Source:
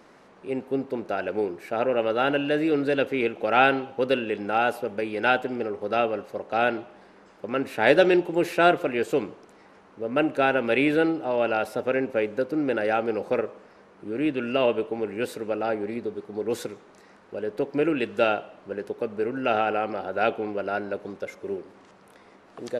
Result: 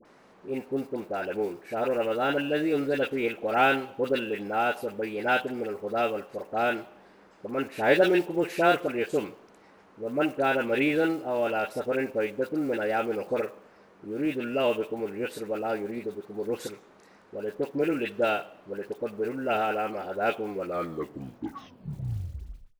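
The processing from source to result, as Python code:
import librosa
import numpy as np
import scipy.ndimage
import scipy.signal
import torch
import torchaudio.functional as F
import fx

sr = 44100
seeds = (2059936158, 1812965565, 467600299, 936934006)

y = fx.tape_stop_end(x, sr, length_s=2.34)
y = fx.quant_float(y, sr, bits=4)
y = fx.dispersion(y, sr, late='highs', ms=54.0, hz=1200.0)
y = F.gain(torch.from_numpy(y), -3.0).numpy()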